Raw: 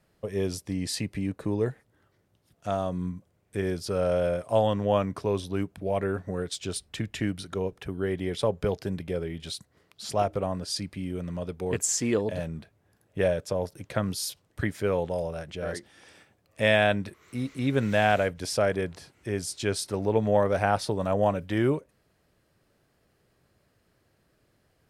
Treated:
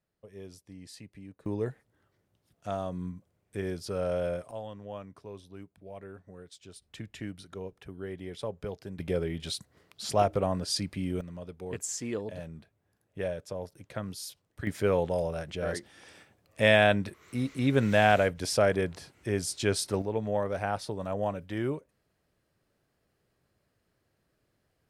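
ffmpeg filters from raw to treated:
-af "asetnsamples=n=441:p=0,asendcmd='1.46 volume volume -5dB;4.51 volume volume -17dB;6.82 volume volume -10dB;8.99 volume volume 1dB;11.21 volume volume -8.5dB;14.67 volume volume 0.5dB;20.02 volume volume -7dB',volume=-17dB"

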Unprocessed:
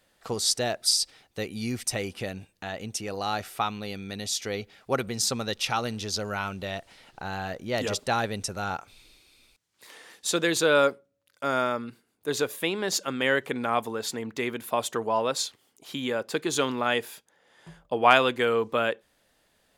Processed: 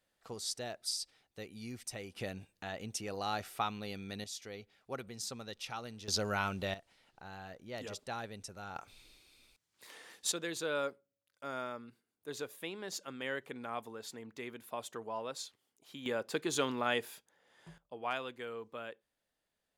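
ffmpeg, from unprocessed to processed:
-af "asetnsamples=n=441:p=0,asendcmd='2.16 volume volume -7dB;4.24 volume volume -15dB;6.08 volume volume -3dB;6.74 volume volume -15dB;8.76 volume volume -5dB;10.32 volume volume -14.5dB;16.06 volume volume -7dB;17.78 volume volume -19dB',volume=-14dB"

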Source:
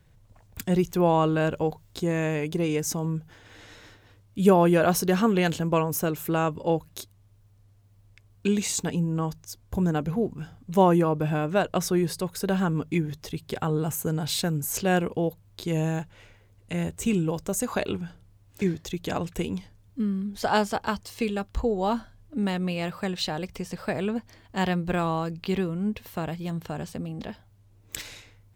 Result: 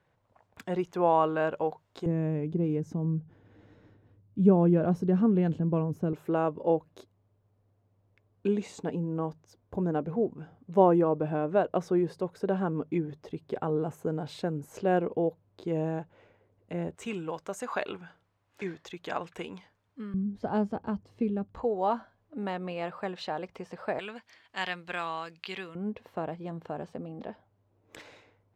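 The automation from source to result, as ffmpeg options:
-af "asetnsamples=n=441:p=0,asendcmd='2.06 bandpass f 190;6.13 bandpass f 480;16.95 bandpass f 1200;20.14 bandpass f 210;21.55 bandpass f 790;23.99 bandpass f 2300;25.75 bandpass f 580',bandpass=f=870:t=q:w=0.81:csg=0"

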